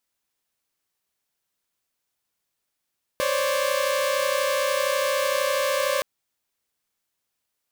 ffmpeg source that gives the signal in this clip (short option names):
-f lavfi -i "aevalsrc='0.0668*((2*mod(523.25*t,1)-1)+(2*mod(554.37*t,1)-1)+(2*mod(587.33*t,1)-1))':d=2.82:s=44100"